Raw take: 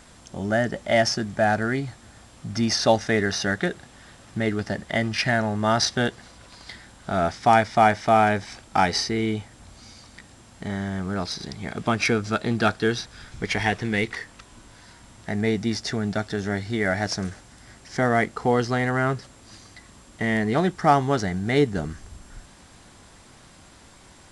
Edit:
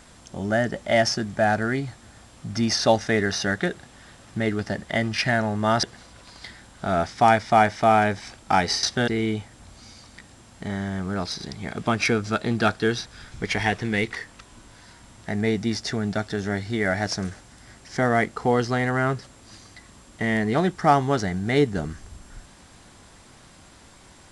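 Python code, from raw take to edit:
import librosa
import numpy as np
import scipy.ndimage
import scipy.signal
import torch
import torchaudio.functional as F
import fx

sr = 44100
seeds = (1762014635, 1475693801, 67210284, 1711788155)

y = fx.edit(x, sr, fx.move(start_s=5.83, length_s=0.25, to_s=9.08), tone=tone)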